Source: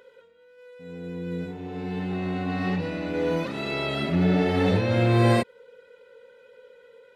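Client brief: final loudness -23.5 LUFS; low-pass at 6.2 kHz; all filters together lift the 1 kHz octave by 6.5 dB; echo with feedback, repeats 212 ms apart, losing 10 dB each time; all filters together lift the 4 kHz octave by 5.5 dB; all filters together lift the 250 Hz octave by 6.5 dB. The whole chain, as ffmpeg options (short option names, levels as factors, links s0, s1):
-af "lowpass=6200,equalizer=f=250:t=o:g=8.5,equalizer=f=1000:t=o:g=8,equalizer=f=4000:t=o:g=6.5,aecho=1:1:212|424|636|848:0.316|0.101|0.0324|0.0104,volume=0.668"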